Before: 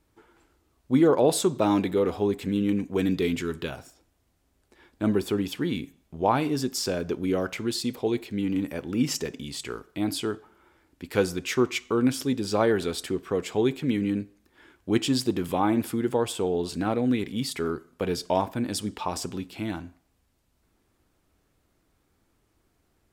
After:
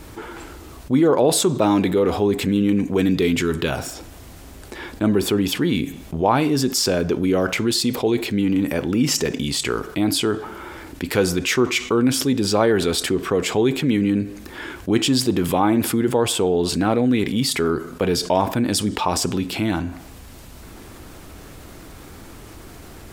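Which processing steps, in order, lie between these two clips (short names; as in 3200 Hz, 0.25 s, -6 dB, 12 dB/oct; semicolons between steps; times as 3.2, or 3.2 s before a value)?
fast leveller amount 50%; gain +2.5 dB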